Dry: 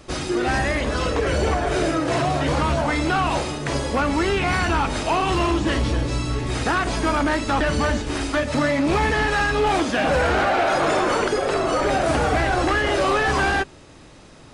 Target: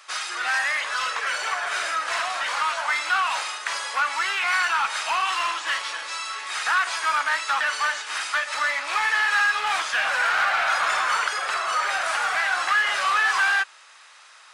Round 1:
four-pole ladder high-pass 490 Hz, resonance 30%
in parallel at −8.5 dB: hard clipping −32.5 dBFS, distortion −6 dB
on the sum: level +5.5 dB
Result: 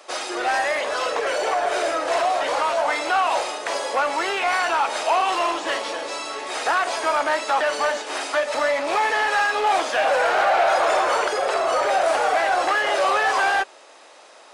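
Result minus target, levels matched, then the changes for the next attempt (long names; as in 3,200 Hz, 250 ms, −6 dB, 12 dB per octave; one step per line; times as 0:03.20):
500 Hz band +15.0 dB
change: four-pole ladder high-pass 990 Hz, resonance 30%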